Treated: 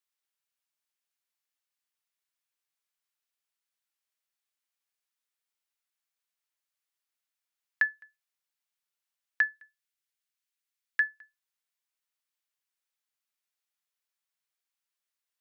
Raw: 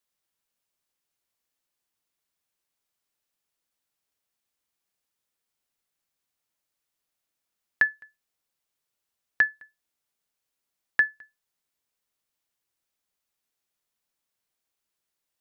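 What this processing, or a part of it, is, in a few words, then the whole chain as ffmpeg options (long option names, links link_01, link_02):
filter by subtraction: -filter_complex "[0:a]asettb=1/sr,asplit=3[link_01][link_02][link_03];[link_01]atrim=end=9.564[link_04];[link_02]atrim=start=9.56:end=11,asetpts=PTS-STARTPTS,afade=type=in:duration=0.004:curve=qsin,afade=type=out:start_time=1.436:duration=0.004:curve=qsin,highpass=1300[link_05];[link_03]atrim=start=10.996[link_06];[link_04][link_05]acrossfade=duration=0.004:curve1=hsin:curve2=qsin[link_07];[link_07][link_06]acrossfade=duration=0.004:curve1=qsin:curve2=hsin,asplit=2[link_08][link_09];[link_09]lowpass=1700,volume=-1[link_10];[link_08][link_10]amix=inputs=2:normalize=0,volume=-6dB"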